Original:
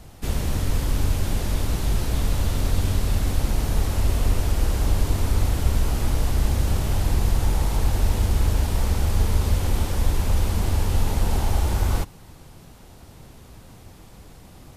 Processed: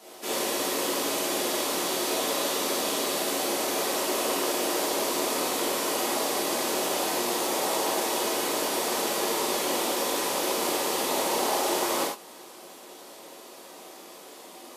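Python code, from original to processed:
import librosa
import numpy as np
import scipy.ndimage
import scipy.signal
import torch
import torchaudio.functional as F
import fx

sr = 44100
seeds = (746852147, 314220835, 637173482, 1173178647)

y = scipy.signal.sosfilt(scipy.signal.butter(4, 330.0, 'highpass', fs=sr, output='sos'), x)
y = fx.peak_eq(y, sr, hz=1700.0, db=-3.5, octaves=0.74)
y = fx.rev_gated(y, sr, seeds[0], gate_ms=130, shape='flat', drr_db=-6.0)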